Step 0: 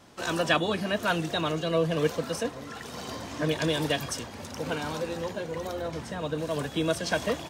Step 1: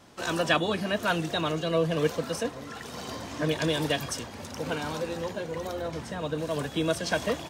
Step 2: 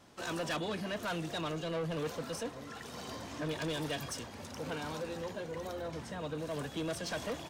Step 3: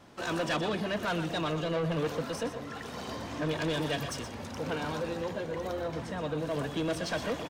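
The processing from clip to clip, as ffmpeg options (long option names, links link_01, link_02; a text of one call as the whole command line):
ffmpeg -i in.wav -af anull out.wav
ffmpeg -i in.wav -af "asoftclip=type=tanh:threshold=-26dB,volume=-5.5dB" out.wav
ffmpeg -i in.wav -filter_complex "[0:a]asplit=2[link_01][link_02];[link_02]adynamicsmooth=sensitivity=8:basefreq=4900,volume=-1.5dB[link_03];[link_01][link_03]amix=inputs=2:normalize=0,aecho=1:1:122:0.316" out.wav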